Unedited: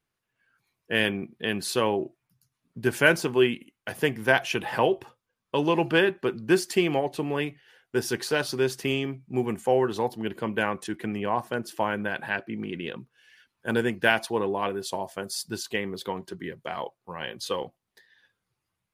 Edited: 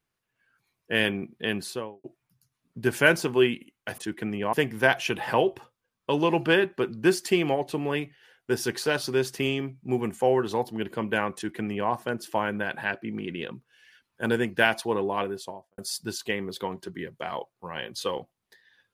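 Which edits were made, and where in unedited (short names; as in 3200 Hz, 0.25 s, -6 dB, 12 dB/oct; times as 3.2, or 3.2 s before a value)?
1.49–2.04 studio fade out
10.8–11.35 copy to 3.98
14.66–15.23 studio fade out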